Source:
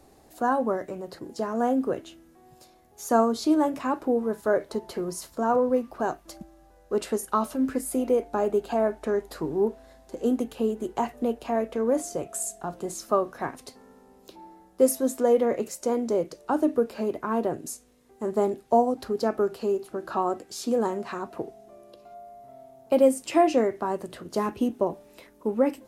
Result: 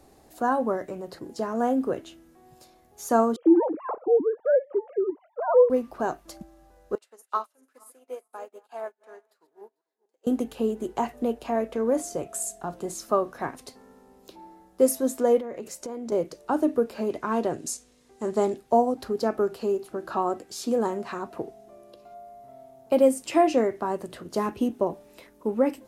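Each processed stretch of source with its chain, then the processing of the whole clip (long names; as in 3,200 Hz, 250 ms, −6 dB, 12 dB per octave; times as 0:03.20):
0:03.36–0:05.70: three sine waves on the formant tracks + low-pass filter 1,300 Hz + low-shelf EQ 430 Hz +7 dB
0:06.95–0:10.27: feedback delay that plays each chunk backwards 222 ms, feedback 48%, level −10.5 dB + high-pass filter 710 Hz + expander for the loud parts 2.5 to 1, over −45 dBFS
0:15.38–0:16.12: downward compressor 8 to 1, threshold −31 dBFS + high-shelf EQ 9,600 Hz −4.5 dB
0:17.10–0:18.58: low-pass filter 7,000 Hz + high-shelf EQ 3,300 Hz +11 dB
whole clip: no processing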